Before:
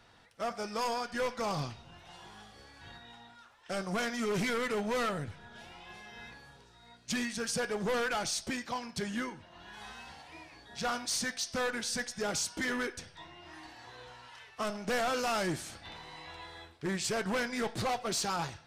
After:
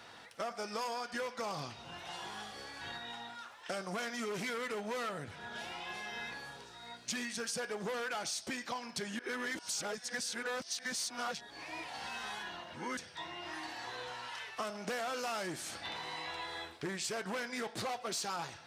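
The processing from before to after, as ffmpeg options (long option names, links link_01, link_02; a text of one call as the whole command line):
ffmpeg -i in.wav -filter_complex "[0:a]asplit=3[link_01][link_02][link_03];[link_01]atrim=end=9.192[link_04];[link_02]atrim=start=9.188:end=12.972,asetpts=PTS-STARTPTS,areverse[link_05];[link_03]atrim=start=12.968[link_06];[link_04][link_05]acrossfade=duration=0.004:curve1=hsin:curve2=hsin[link_07];[link_07][link_06]acrossfade=duration=0.004:curve1=hsin:curve2=hsin,highpass=frequency=310:poles=1,acompressor=threshold=-47dB:ratio=4,volume=8.5dB" out.wav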